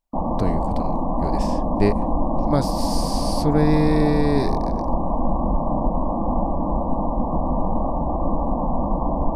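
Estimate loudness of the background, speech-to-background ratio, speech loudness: -24.5 LUFS, 1.0 dB, -23.5 LUFS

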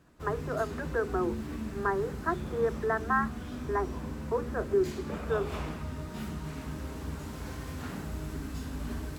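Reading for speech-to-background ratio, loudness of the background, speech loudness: 6.0 dB, -38.5 LUFS, -32.5 LUFS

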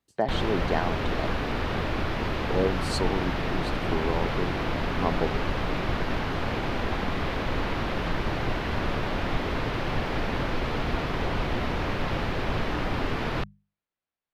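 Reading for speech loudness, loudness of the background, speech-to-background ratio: -31.5 LUFS, -29.5 LUFS, -2.0 dB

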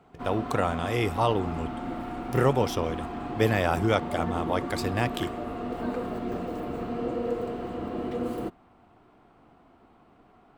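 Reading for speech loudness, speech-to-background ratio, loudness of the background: -28.0 LUFS, 5.5 dB, -33.5 LUFS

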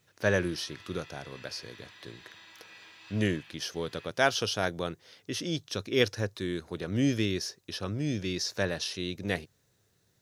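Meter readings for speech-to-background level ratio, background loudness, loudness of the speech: 19.5 dB, -51.0 LUFS, -31.5 LUFS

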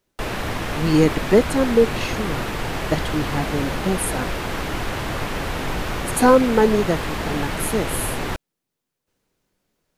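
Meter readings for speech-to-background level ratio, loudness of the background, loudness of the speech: 5.5 dB, -26.5 LUFS, -21.0 LUFS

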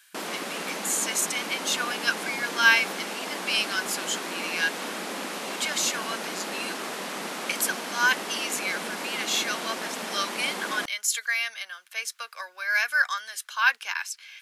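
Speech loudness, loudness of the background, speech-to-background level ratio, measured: -27.0 LUFS, -33.0 LUFS, 6.0 dB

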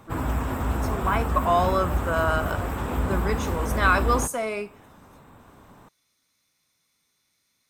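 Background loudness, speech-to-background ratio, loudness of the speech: -28.0 LUFS, 2.0 dB, -26.0 LUFS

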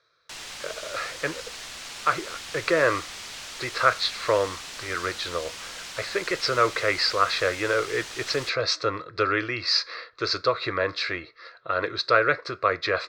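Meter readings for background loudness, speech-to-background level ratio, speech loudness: -36.5 LUFS, 11.0 dB, -25.5 LUFS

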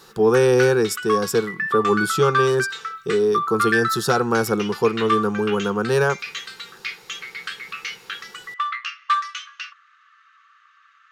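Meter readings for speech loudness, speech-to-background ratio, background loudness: -20.5 LUFS, 6.0 dB, -26.5 LUFS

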